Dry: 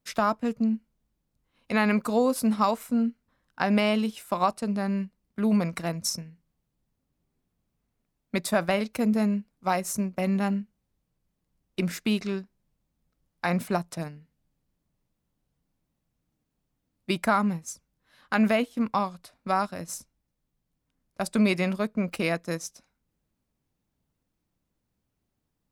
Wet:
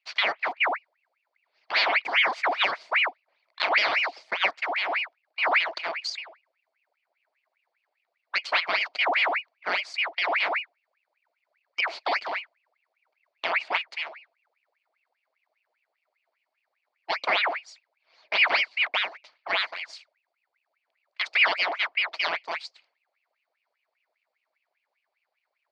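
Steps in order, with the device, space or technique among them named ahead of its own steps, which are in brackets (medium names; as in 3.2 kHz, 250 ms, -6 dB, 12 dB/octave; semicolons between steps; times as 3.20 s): voice changer toy (ring modulator with a swept carrier 1.6 kHz, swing 70%, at 5 Hz; cabinet simulation 550–4900 Hz, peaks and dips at 640 Hz +9 dB, 930 Hz +3 dB, 2.2 kHz +8 dB, 4.5 kHz +10 dB); trim -1 dB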